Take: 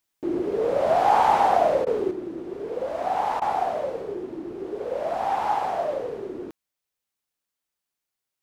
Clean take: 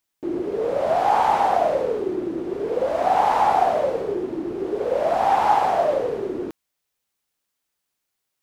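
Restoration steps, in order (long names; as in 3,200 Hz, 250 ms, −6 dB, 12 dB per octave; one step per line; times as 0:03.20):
repair the gap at 0:01.85/0:03.40, 15 ms
level 0 dB, from 0:02.11 +6.5 dB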